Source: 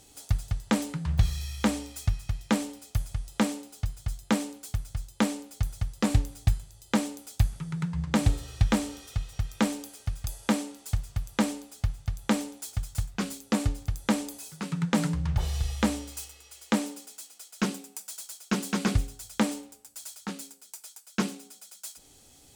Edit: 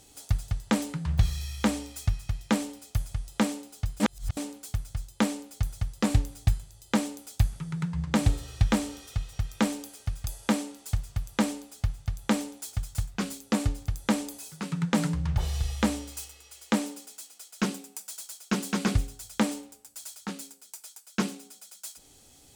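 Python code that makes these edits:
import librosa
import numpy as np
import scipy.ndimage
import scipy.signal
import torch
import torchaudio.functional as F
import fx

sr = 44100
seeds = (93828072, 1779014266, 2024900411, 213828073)

y = fx.edit(x, sr, fx.reverse_span(start_s=4.0, length_s=0.37), tone=tone)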